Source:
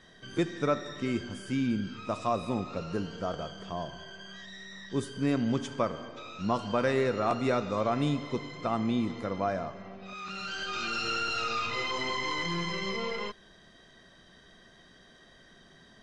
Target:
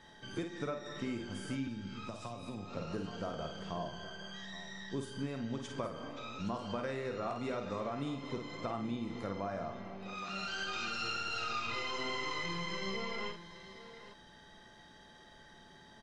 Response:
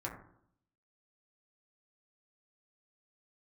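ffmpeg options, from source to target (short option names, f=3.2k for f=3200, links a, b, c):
-filter_complex "[0:a]acompressor=threshold=-33dB:ratio=6,aecho=1:1:51|821:0.501|0.2,asettb=1/sr,asplit=3[a][b][c];[a]atrim=end=1.674[d];[b]atrim=start=1.67:end=2.77,asetpts=PTS-STARTPTS,afade=t=in:d=0.004:c=qsin,afade=t=out:st=1.096:d=0.004:c=qsin,acrossover=split=160|3000[e][f][g];[f]acompressor=threshold=-40dB:ratio=6[h];[e][h][g]amix=inputs=3:normalize=0[i];[c]atrim=start=2.766[j];[d][i]acrossfade=d=0.004:c1=hsin:c2=qsin[k];[k][j]acrossfade=d=0.004:c1=qsin:c2=hsin,aeval=exprs='val(0)+0.001*sin(2*PI*860*n/s)':c=same,volume=-2.5dB"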